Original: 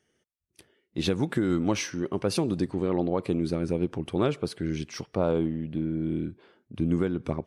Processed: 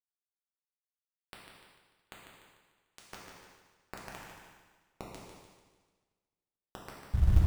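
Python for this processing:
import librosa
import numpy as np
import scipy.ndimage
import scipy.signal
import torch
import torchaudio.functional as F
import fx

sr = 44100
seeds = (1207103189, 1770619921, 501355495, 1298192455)

p1 = fx.tape_stop_end(x, sr, length_s=0.98)
p2 = fx.peak_eq(p1, sr, hz=1100.0, db=-14.0, octaves=0.2)
p3 = fx.level_steps(p2, sr, step_db=22)
p4 = scipy.signal.sosfilt(scipy.signal.butter(4, 1500.0, 'lowpass', fs=sr, output='sos'), p3)
p5 = fx.spec_gate(p4, sr, threshold_db=-30, keep='strong')
p6 = np.where(np.abs(p5) >= 10.0 ** (-34.0 / 20.0), p5, 0.0)
p7 = p6 + fx.echo_feedback(p6, sr, ms=148, feedback_pct=46, wet_db=-8.0, dry=0)
p8 = fx.over_compress(p7, sr, threshold_db=-26.0, ratio=-0.5)
p9 = fx.rev_gated(p8, sr, seeds[0], gate_ms=450, shape='falling', drr_db=-3.5)
p10 = fx.echo_warbled(p9, sr, ms=221, feedback_pct=45, rate_hz=2.8, cents=181, wet_db=-21)
y = F.gain(torch.from_numpy(p10), 3.5).numpy()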